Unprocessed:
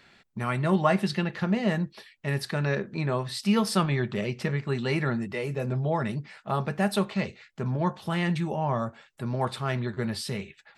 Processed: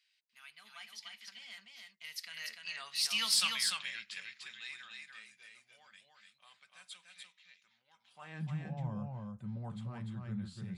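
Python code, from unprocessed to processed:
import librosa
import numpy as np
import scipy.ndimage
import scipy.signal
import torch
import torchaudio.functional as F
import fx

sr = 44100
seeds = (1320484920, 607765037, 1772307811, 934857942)

p1 = fx.doppler_pass(x, sr, speed_mps=36, closest_m=11.0, pass_at_s=3.25)
p2 = fx.filter_sweep_highpass(p1, sr, from_hz=3000.0, to_hz=86.0, start_s=7.98, end_s=8.58, q=1.1)
p3 = 10.0 ** (-30.0 / 20.0) * np.tanh(p2 / 10.0 ** (-30.0 / 20.0))
p4 = p2 + F.gain(torch.from_numpy(p3), -3.0).numpy()
p5 = fx.low_shelf_res(p4, sr, hz=260.0, db=6.5, q=3.0)
y = p5 + 10.0 ** (-3.5 / 20.0) * np.pad(p5, (int(295 * sr / 1000.0), 0))[:len(p5)]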